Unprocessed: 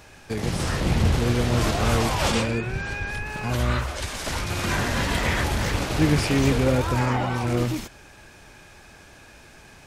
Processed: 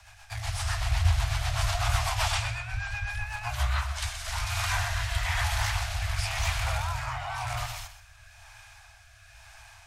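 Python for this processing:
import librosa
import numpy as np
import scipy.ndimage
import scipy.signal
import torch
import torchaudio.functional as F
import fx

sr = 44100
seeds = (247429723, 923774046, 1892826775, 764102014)

y = fx.rotary_switch(x, sr, hz=8.0, then_hz=1.0, switch_at_s=3.38)
y = scipy.signal.sosfilt(scipy.signal.cheby1(5, 1.0, [110.0, 670.0], 'bandstop', fs=sr, output='sos'), y)
y = fx.echo_feedback(y, sr, ms=126, feedback_pct=28, wet_db=-12.5)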